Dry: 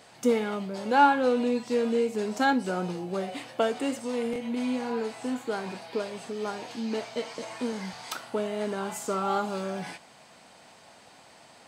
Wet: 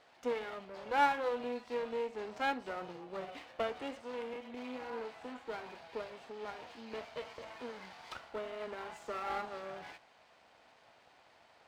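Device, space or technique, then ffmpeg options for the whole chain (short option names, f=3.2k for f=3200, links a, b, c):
crystal radio: -af "highpass=390,lowpass=3.4k,aeval=exprs='if(lt(val(0),0),0.251*val(0),val(0))':c=same,highpass=51,volume=-5dB"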